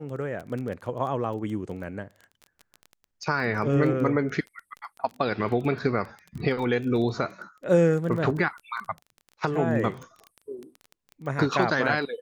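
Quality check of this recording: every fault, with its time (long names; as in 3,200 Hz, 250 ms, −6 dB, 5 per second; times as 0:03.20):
surface crackle 15 per second −33 dBFS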